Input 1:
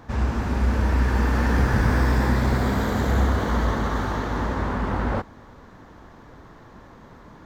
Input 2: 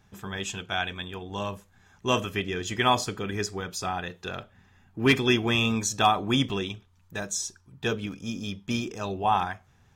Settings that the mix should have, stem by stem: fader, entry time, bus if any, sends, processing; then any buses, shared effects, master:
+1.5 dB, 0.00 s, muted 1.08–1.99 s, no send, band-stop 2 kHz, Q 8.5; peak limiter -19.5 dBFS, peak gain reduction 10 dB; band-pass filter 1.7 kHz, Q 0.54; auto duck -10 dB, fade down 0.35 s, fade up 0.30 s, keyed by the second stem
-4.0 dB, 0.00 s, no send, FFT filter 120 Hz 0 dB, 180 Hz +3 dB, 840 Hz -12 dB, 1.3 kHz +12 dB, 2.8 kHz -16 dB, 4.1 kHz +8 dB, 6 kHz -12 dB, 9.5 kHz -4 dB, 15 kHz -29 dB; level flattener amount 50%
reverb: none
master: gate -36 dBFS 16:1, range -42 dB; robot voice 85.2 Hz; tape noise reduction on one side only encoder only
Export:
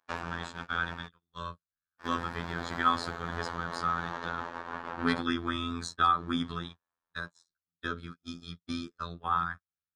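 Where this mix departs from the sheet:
stem 1 +1.5 dB -> +8.0 dB; stem 2: missing level flattener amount 50%

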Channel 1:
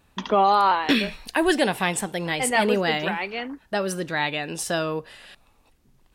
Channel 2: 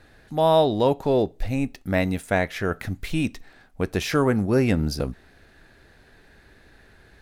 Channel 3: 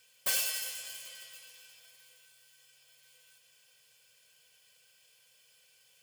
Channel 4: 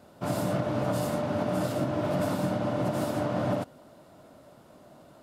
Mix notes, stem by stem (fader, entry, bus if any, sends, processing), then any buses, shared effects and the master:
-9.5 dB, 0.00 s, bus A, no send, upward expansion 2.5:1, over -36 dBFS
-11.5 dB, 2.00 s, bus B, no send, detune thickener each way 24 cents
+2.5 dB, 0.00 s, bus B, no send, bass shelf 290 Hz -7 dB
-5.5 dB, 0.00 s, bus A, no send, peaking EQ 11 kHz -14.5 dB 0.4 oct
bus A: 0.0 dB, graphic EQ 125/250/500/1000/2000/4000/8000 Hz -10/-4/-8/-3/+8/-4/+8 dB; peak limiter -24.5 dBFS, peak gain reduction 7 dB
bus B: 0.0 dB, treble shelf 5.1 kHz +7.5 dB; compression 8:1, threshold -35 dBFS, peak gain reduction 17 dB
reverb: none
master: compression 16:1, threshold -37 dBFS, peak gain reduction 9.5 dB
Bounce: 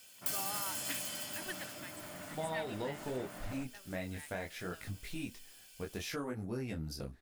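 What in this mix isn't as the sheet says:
stem 1 -9.5 dB -> -21.0 dB; stem 4 -5.5 dB -> -14.5 dB; master: missing compression 16:1, threshold -37 dBFS, peak gain reduction 9.5 dB

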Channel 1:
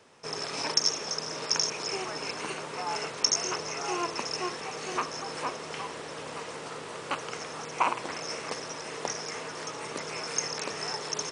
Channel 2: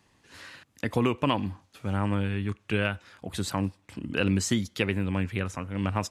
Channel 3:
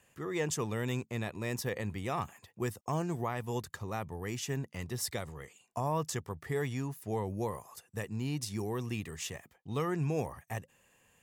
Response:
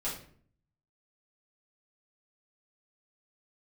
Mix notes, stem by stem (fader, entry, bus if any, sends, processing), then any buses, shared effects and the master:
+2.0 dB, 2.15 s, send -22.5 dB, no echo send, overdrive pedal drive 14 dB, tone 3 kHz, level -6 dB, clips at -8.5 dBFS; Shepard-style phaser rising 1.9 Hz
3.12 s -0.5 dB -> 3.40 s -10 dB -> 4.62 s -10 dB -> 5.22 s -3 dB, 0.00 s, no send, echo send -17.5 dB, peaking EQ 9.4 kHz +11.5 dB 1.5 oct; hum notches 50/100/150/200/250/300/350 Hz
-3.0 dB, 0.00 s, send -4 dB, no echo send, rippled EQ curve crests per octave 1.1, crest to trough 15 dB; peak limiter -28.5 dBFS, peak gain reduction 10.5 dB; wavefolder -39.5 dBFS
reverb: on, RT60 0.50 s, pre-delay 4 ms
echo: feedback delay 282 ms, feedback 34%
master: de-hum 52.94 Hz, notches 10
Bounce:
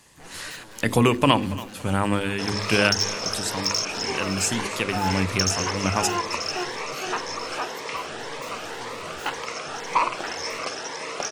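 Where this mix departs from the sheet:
stem 2 -0.5 dB -> +7.5 dB; reverb return -6.5 dB

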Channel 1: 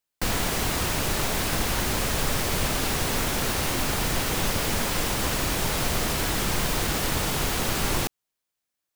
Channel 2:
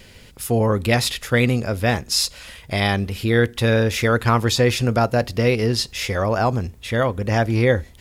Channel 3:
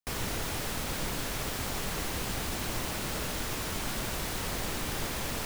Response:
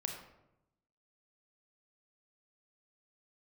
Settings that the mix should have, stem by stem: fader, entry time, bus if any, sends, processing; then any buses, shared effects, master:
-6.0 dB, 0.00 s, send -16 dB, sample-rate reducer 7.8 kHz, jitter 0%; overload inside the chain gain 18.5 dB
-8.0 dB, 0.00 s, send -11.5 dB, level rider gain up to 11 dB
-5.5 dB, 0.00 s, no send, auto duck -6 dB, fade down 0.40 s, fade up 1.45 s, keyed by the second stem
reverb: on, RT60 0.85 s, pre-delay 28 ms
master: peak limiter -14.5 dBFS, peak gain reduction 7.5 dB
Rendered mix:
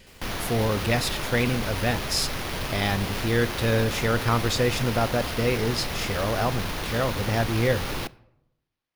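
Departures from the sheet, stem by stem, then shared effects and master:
stem 2: missing level rider gain up to 11 dB; stem 3 -5.5 dB -> -16.5 dB; master: missing peak limiter -14.5 dBFS, peak gain reduction 7.5 dB

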